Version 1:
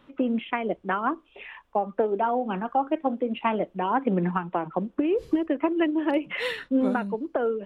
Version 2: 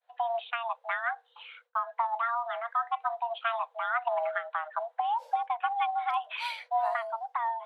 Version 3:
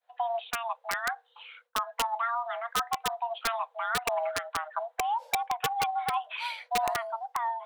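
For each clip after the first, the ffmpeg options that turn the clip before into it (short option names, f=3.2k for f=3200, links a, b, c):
-af "afreqshift=460,agate=range=-33dB:threshold=-48dB:ratio=3:detection=peak,volume=-5.5dB"
-af "aeval=exprs='(mod(10*val(0)+1,2)-1)/10':c=same"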